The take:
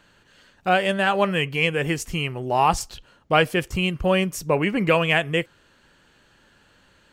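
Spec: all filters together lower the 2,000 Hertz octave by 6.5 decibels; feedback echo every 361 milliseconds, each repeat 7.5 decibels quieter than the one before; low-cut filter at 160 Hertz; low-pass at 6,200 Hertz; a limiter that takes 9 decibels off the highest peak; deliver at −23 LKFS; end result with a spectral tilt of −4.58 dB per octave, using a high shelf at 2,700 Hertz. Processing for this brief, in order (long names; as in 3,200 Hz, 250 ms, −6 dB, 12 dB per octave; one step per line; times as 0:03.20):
high-pass filter 160 Hz
low-pass filter 6,200 Hz
parametric band 2,000 Hz −6 dB
high-shelf EQ 2,700 Hz −5.5 dB
brickwall limiter −15.5 dBFS
repeating echo 361 ms, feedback 42%, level −7.5 dB
level +4 dB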